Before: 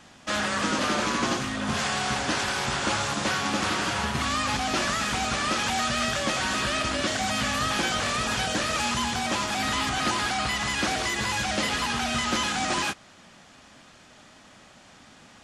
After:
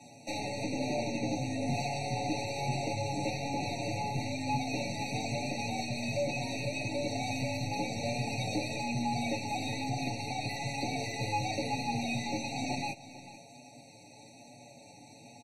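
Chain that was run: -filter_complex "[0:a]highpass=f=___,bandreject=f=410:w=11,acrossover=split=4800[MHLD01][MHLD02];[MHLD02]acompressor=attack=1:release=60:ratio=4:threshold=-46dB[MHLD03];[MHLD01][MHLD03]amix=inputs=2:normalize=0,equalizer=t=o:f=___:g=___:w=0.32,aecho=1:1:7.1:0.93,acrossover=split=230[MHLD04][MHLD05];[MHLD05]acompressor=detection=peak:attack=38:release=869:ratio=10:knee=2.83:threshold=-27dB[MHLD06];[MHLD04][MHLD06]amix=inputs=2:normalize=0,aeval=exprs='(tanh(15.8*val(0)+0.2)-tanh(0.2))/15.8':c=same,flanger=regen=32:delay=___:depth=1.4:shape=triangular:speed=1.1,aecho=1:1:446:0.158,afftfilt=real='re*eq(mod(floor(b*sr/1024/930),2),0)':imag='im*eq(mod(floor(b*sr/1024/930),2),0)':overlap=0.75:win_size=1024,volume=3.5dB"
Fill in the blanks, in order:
110, 2k, -13, 8.2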